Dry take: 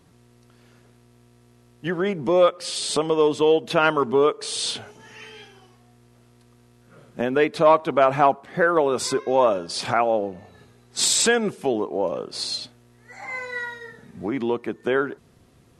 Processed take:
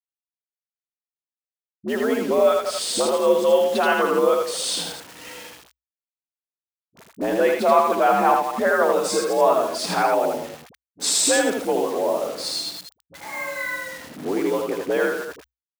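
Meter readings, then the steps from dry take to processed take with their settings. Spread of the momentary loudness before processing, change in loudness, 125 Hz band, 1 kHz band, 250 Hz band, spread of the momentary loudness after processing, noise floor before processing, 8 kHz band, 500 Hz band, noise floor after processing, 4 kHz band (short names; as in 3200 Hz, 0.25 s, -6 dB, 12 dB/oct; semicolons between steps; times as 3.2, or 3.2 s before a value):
15 LU, +1.0 dB, -6.5 dB, +2.0 dB, 0.0 dB, 15 LU, -56 dBFS, +1.5 dB, +1.0 dB, under -85 dBFS, 0.0 dB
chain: reverse delay 0.116 s, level -10 dB; bell 3300 Hz -3.5 dB 1.9 oct; in parallel at -1 dB: compressor 6:1, threshold -25 dBFS, peak gain reduction 13 dB; on the sum: bit-crush 6-bit; frequency shift +60 Hz; dispersion highs, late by 51 ms, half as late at 540 Hz; on a send: echo 80 ms -3.5 dB; on the sum: gain -3 dB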